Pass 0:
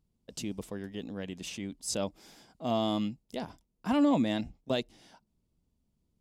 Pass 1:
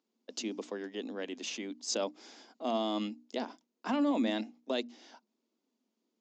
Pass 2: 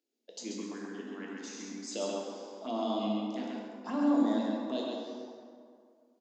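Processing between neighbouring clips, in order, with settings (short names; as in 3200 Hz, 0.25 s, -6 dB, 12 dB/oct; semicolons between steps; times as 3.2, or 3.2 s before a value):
Chebyshev band-pass 230–6900 Hz, order 5; notches 60/120/180/240/300 Hz; limiter -25.5 dBFS, peak gain reduction 9.5 dB; gain +3 dB
envelope phaser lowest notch 180 Hz, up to 2700 Hz, full sweep at -27.5 dBFS; on a send: echo 0.134 s -4 dB; on the sum: plate-style reverb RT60 2.2 s, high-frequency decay 0.55×, DRR -2 dB; gain -3.5 dB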